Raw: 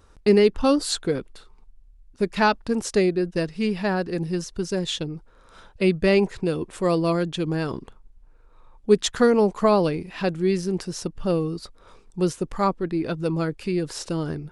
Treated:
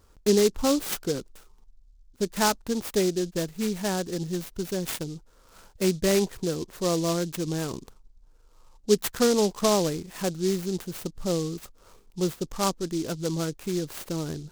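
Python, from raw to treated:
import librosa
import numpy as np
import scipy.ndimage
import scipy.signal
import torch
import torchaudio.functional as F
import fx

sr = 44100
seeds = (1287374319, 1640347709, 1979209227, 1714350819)

y = fx.noise_mod_delay(x, sr, seeds[0], noise_hz=5100.0, depth_ms=0.088)
y = y * librosa.db_to_amplitude(-4.0)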